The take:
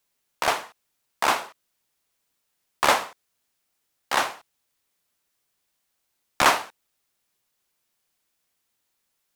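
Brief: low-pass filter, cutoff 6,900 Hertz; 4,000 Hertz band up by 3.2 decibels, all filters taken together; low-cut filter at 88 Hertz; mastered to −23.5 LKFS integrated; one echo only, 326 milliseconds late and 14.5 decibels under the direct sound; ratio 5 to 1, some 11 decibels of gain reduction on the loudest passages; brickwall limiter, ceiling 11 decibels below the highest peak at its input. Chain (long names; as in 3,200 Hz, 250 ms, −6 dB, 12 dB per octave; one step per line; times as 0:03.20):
high-pass filter 88 Hz
low-pass filter 6,900 Hz
parametric band 4,000 Hz +4.5 dB
downward compressor 5 to 1, threshold −25 dBFS
brickwall limiter −18.5 dBFS
single-tap delay 326 ms −14.5 dB
level +12.5 dB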